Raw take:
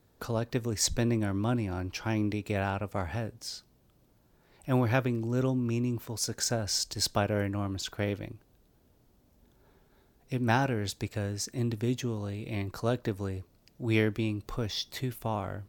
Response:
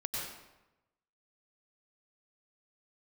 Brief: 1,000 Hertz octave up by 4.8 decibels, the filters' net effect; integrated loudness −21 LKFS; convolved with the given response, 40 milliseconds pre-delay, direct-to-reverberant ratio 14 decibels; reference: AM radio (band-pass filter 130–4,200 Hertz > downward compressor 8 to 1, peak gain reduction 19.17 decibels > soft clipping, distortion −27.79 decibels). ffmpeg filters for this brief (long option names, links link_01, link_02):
-filter_complex "[0:a]equalizer=frequency=1000:width_type=o:gain=6.5,asplit=2[link_01][link_02];[1:a]atrim=start_sample=2205,adelay=40[link_03];[link_02][link_03]afir=irnorm=-1:irlink=0,volume=-17dB[link_04];[link_01][link_04]amix=inputs=2:normalize=0,highpass=130,lowpass=4200,acompressor=threshold=-37dB:ratio=8,asoftclip=threshold=-23.5dB,volume=21.5dB"